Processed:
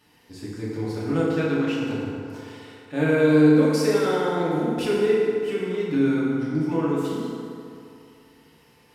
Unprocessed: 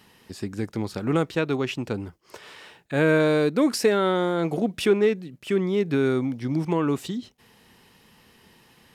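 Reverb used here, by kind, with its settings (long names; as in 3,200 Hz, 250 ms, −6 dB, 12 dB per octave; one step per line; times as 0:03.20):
feedback delay network reverb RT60 2.6 s, low-frequency decay 0.85×, high-frequency decay 0.55×, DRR −7.5 dB
level −9 dB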